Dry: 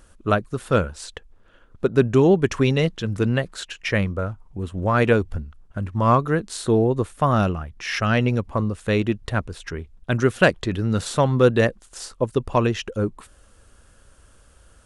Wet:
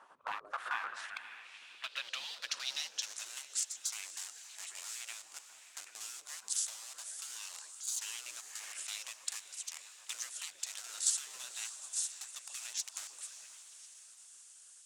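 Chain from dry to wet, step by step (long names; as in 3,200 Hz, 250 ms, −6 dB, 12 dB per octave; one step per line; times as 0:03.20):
in parallel at −9 dB: bit reduction 4 bits
on the sum: downward compressor 6 to 1, threshold −22 dBFS, peak gain reduction 14 dB
on a send: echo through a band-pass that steps 131 ms, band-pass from 180 Hz, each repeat 0.7 octaves, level −0.5 dB
on the sum: gate on every frequency bin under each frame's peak −20 dB weak
feedback delay with all-pass diffusion 573 ms, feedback 44%, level −13 dB
band-pass filter sweep 970 Hz → 7,400 Hz, 0:00.14–0:03.31
level +9 dB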